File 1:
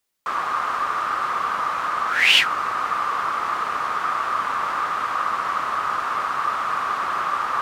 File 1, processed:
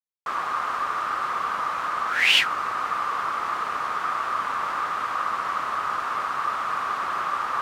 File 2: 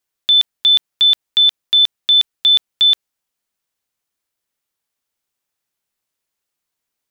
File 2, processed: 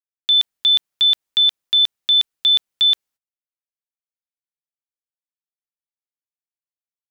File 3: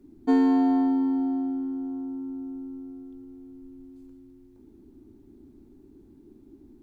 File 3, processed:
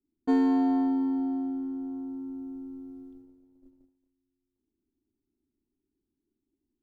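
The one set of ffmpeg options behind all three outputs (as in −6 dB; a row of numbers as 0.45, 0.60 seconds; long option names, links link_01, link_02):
-af "agate=range=-28dB:threshold=-43dB:ratio=16:detection=peak,volume=-3dB"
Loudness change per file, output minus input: −3.0, −3.0, −2.5 LU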